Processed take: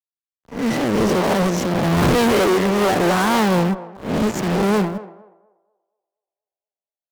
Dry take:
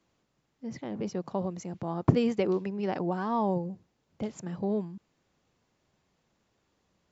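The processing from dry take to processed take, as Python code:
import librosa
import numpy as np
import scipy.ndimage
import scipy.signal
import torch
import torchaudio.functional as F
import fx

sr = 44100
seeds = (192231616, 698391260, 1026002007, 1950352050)

p1 = fx.spec_swells(x, sr, rise_s=0.8)
p2 = fx.bandpass_edges(p1, sr, low_hz=170.0, high_hz=4000.0)
p3 = fx.sample_hold(p2, sr, seeds[0], rate_hz=2500.0, jitter_pct=0)
p4 = p2 + F.gain(torch.from_numpy(p3), -10.5).numpy()
p5 = fx.fuzz(p4, sr, gain_db=42.0, gate_db=-43.0)
p6 = p5 + fx.echo_banded(p5, sr, ms=239, feedback_pct=57, hz=660.0, wet_db=-10.5, dry=0)
p7 = fx.band_widen(p6, sr, depth_pct=70)
y = F.gain(torch.from_numpy(p7), -2.0).numpy()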